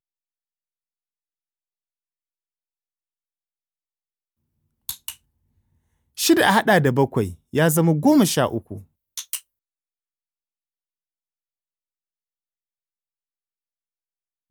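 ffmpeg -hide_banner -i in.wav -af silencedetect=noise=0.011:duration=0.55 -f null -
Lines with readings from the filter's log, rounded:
silence_start: 0.00
silence_end: 4.89 | silence_duration: 4.89
silence_start: 5.15
silence_end: 6.17 | silence_duration: 1.03
silence_start: 9.39
silence_end: 14.50 | silence_duration: 5.11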